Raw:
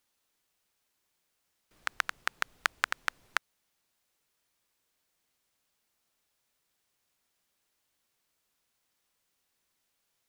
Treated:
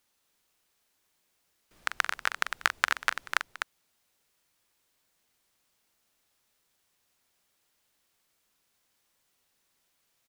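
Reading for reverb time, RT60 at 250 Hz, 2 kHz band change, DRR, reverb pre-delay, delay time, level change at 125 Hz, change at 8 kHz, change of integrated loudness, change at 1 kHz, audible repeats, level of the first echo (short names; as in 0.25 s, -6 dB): none, none, +4.0 dB, none, none, 43 ms, n/a, +4.0 dB, +3.5 dB, +4.0 dB, 3, -10.5 dB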